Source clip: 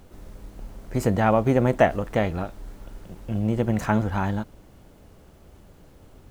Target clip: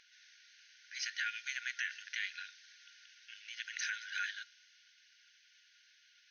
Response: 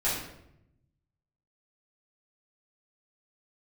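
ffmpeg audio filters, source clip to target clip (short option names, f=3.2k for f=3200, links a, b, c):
-filter_complex "[0:a]equalizer=f=4.3k:t=o:w=2.4:g=6.5,asplit=2[a][b];[1:a]atrim=start_sample=2205[c];[b][c]afir=irnorm=-1:irlink=0,volume=-31.5dB[d];[a][d]amix=inputs=2:normalize=0,afftfilt=real='re*between(b*sr/4096,1400,6500)':imag='im*between(b*sr/4096,1400,6500)':win_size=4096:overlap=0.75,aphaser=in_gain=1:out_gain=1:delay=3.5:decay=0.21:speed=0.77:type=triangular,alimiter=limit=-21dB:level=0:latency=1:release=80,adynamicequalizer=threshold=0.00447:dfrequency=3300:dqfactor=0.7:tfrequency=3300:tqfactor=0.7:attack=5:release=100:ratio=0.375:range=2:mode=boostabove:tftype=highshelf,volume=-4.5dB"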